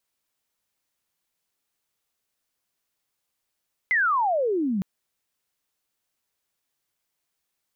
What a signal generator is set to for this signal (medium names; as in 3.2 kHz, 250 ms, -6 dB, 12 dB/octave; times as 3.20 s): sweep logarithmic 2.1 kHz -> 180 Hz -18 dBFS -> -22.5 dBFS 0.91 s